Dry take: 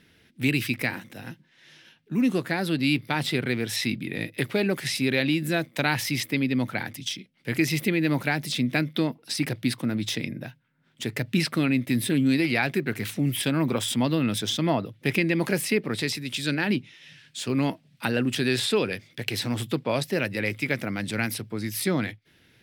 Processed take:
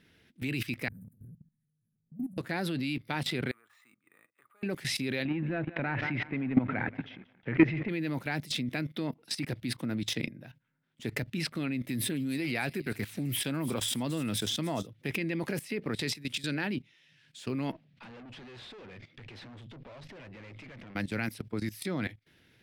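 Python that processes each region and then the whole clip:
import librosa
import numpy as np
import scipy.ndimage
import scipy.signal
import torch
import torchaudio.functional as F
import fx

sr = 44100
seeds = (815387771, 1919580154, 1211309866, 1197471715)

y = fx.chain(x, sr, fx.cheby2_bandstop(low_hz=360.0, high_hz=5700.0, order=4, stop_db=40),
    fx.high_shelf(hz=3800.0, db=-10.0),
    fx.transient(attack_db=-11, sustain_db=9), at=(0.88, 2.38))
y = fx.chain(y, sr, fx.bandpass_q(hz=1200.0, q=13.0),
    fx.resample_bad(factor=4, down='filtered', up='hold'), at=(3.51, 4.63))
y = fx.chain(y, sr, fx.echo_feedback(ms=179, feedback_pct=51, wet_db=-17.0),
    fx.leveller(passes=2),
    fx.lowpass(hz=2300.0, slope=24), at=(5.25, 7.89))
y = fx.chain(y, sr, fx.high_shelf(hz=7700.0, db=4.5),
    fx.echo_wet_highpass(ms=290, feedback_pct=54, hz=4900.0, wet_db=-9), at=(11.8, 14.87))
y = fx.chain(y, sr, fx.tube_stage(drive_db=38.0, bias=0.45),
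    fx.lowpass(hz=3500.0, slope=12),
    fx.env_flatten(amount_pct=50), at=(17.72, 20.95))
y = fx.high_shelf(y, sr, hz=4000.0, db=-3.0)
y = fx.level_steps(y, sr, step_db=16)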